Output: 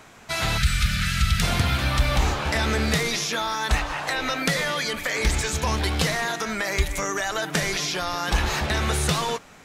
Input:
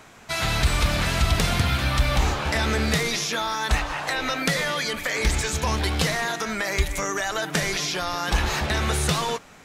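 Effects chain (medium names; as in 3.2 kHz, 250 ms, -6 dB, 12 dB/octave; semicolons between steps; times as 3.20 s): time-frequency box 0.58–1.42 s, 220–1200 Hz -21 dB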